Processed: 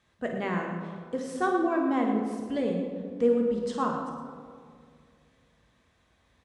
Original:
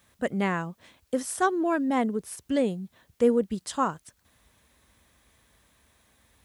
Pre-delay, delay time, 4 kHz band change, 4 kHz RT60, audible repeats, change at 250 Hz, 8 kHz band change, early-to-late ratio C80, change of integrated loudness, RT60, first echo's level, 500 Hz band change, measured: 3 ms, 52 ms, -4.5 dB, 1.2 s, 2, -0.5 dB, under -10 dB, 4.0 dB, -1.5 dB, 2.1 s, -9.5 dB, -0.5 dB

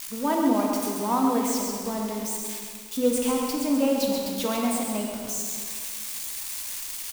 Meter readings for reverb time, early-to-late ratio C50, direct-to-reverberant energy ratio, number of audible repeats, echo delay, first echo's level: 2.0 s, 0.5 dB, -1.0 dB, 1, 134 ms, -6.0 dB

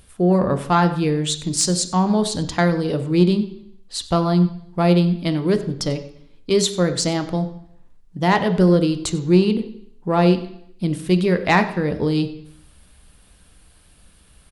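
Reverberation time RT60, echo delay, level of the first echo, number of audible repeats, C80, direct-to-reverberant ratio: 0.70 s, 94 ms, -18.5 dB, 1, 14.0 dB, 8.5 dB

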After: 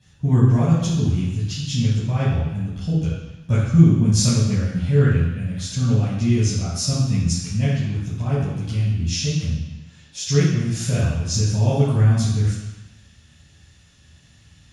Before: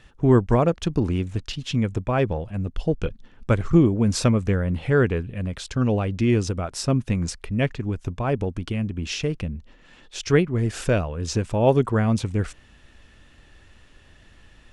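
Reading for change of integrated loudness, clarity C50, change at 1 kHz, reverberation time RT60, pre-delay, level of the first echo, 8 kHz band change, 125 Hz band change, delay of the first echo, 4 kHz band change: +3.0 dB, -0.5 dB, -5.0 dB, 1.1 s, 3 ms, no echo, +8.5 dB, +6.5 dB, no echo, +5.0 dB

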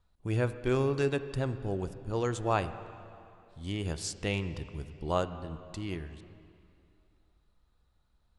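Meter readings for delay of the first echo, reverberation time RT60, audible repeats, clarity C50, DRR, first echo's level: no echo, 2.6 s, no echo, 12.0 dB, 11.0 dB, no echo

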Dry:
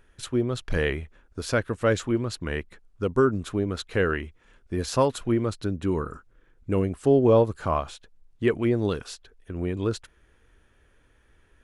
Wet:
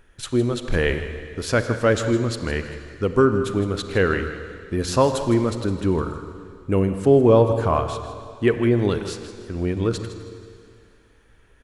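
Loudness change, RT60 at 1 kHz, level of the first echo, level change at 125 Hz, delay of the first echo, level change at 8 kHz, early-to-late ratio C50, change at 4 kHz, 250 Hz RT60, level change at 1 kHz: +4.5 dB, 2.4 s, -13.5 dB, +5.0 dB, 160 ms, +4.5 dB, 8.0 dB, +4.5 dB, 2.2 s, +4.5 dB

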